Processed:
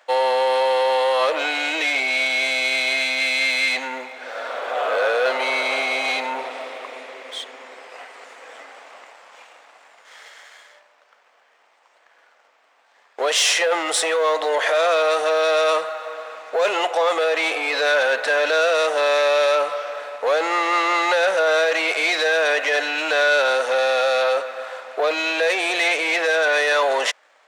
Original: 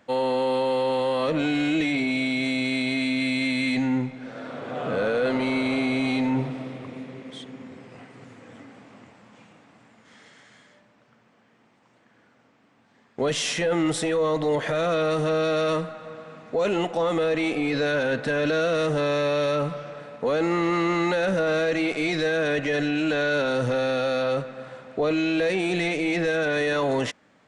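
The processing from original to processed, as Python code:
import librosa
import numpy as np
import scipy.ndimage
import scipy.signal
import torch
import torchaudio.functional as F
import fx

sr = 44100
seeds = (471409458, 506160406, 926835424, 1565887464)

y = fx.leveller(x, sr, passes=1)
y = scipy.signal.sosfilt(scipy.signal.butter(4, 560.0, 'highpass', fs=sr, output='sos'), y)
y = F.gain(torch.from_numpy(y), 7.0).numpy()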